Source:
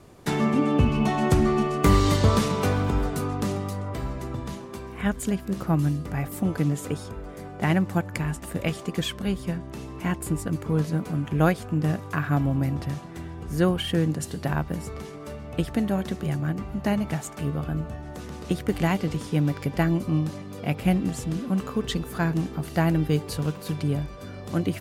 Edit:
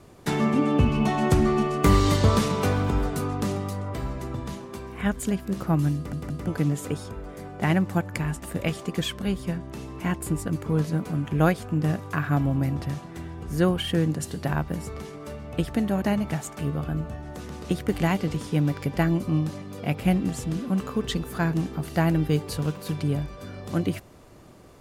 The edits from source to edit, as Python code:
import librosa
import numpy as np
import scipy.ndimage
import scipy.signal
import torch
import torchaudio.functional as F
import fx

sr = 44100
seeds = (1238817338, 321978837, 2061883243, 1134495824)

y = fx.edit(x, sr, fx.stutter_over(start_s=5.96, slice_s=0.17, count=3),
    fx.cut(start_s=16.02, length_s=0.8), tone=tone)